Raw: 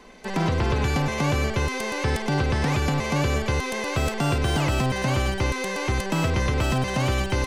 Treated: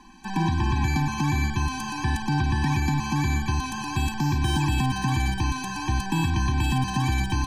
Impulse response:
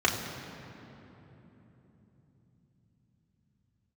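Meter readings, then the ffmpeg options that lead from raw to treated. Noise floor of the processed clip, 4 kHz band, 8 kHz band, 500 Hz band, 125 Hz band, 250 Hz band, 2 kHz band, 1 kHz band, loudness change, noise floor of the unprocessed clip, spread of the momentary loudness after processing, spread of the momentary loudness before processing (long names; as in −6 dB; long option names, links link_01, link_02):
−32 dBFS, −2.0 dB, −1.5 dB, −14.5 dB, 0.0 dB, +0.5 dB, −3.0 dB, 0.0 dB, −1.0 dB, −30 dBFS, 4 LU, 3 LU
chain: -filter_complex "[0:a]equalizer=frequency=570:width=2.9:gain=7.5,asplit=2[link_01][link_02];[1:a]atrim=start_sample=2205[link_03];[link_02][link_03]afir=irnorm=-1:irlink=0,volume=-32dB[link_04];[link_01][link_04]amix=inputs=2:normalize=0,afftfilt=real='re*eq(mod(floor(b*sr/1024/380),2),0)':imag='im*eq(mod(floor(b*sr/1024/380),2),0)':win_size=1024:overlap=0.75"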